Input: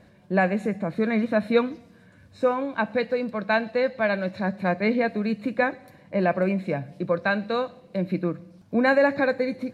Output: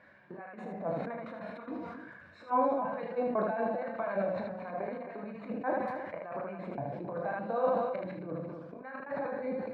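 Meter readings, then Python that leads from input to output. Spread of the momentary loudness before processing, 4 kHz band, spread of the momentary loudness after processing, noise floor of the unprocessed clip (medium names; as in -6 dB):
8 LU, under -20 dB, 14 LU, -54 dBFS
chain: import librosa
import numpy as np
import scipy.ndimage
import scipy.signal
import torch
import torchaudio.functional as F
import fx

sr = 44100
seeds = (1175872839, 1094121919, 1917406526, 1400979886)

p1 = fx.spec_quant(x, sr, step_db=15)
p2 = fx.tilt_eq(p1, sr, slope=-2.0)
p3 = fx.over_compress(p2, sr, threshold_db=-26.0, ratio=-0.5)
p4 = fx.step_gate(p3, sr, bpm=197, pattern='xxxxxx.xxxxxx.x', floor_db=-60.0, edge_ms=4.5)
p5 = p4 + fx.room_early_taps(p4, sr, ms=(23, 35, 77), db=(-9.5, -8.5, -3.5), dry=0)
p6 = fx.auto_wah(p5, sr, base_hz=760.0, top_hz=1700.0, q=2.0, full_db=-21.0, direction='down')
p7 = p6 + 10.0 ** (-12.5 / 20.0) * np.pad(p6, (int(268 * sr / 1000.0), 0))[:len(p6)]
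y = fx.sustainer(p7, sr, db_per_s=33.0)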